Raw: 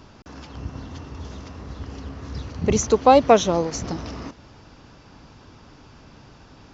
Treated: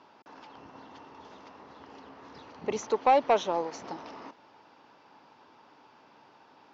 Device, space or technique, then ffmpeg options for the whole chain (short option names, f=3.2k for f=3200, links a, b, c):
intercom: -af "highpass=350,lowpass=3.9k,equalizer=f=890:t=o:w=0.37:g=8,asoftclip=type=tanh:threshold=-6.5dB,volume=-7.5dB"